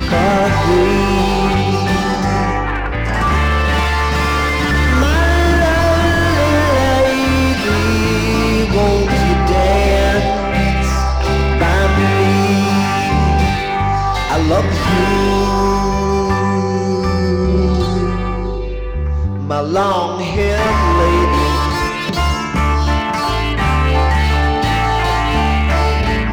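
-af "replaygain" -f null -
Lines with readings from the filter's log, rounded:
track_gain = -2.0 dB
track_peak = 0.434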